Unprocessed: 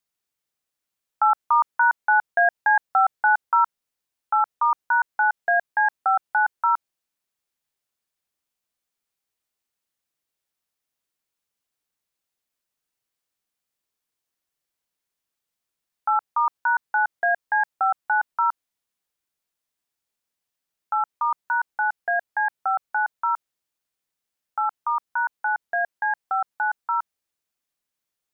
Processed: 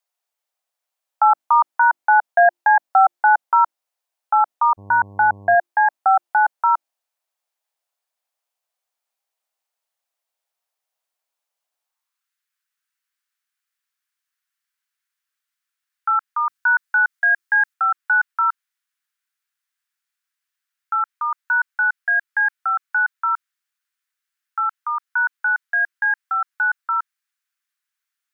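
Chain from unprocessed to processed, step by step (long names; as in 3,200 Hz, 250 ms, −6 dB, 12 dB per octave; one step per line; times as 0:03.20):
high-pass filter sweep 680 Hz → 1,500 Hz, 0:11.79–0:12.29
0:16.40–0:17.74: bass and treble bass +9 dB, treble +4 dB
mains-hum notches 50/100/150/200/250/300/350 Hz
0:04.77–0:05.54: hum with harmonics 100 Hz, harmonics 11, −41 dBFS −6 dB per octave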